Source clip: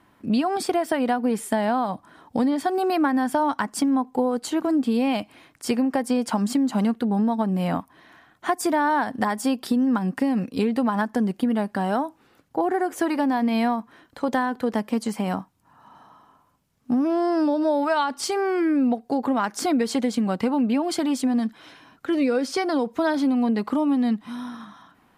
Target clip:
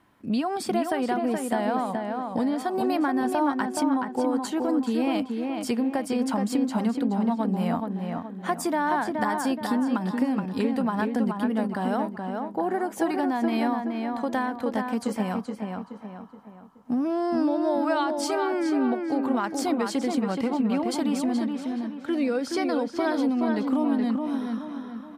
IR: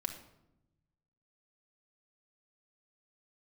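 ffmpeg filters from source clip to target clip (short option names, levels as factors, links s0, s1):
-filter_complex "[0:a]asplit=2[s0][s1];[s1]adelay=424,lowpass=f=2800:p=1,volume=0.631,asplit=2[s2][s3];[s3]adelay=424,lowpass=f=2800:p=1,volume=0.44,asplit=2[s4][s5];[s5]adelay=424,lowpass=f=2800:p=1,volume=0.44,asplit=2[s6][s7];[s7]adelay=424,lowpass=f=2800:p=1,volume=0.44,asplit=2[s8][s9];[s9]adelay=424,lowpass=f=2800:p=1,volume=0.44,asplit=2[s10][s11];[s11]adelay=424,lowpass=f=2800:p=1,volume=0.44[s12];[s0][s2][s4][s6][s8][s10][s12]amix=inputs=7:normalize=0,volume=0.631"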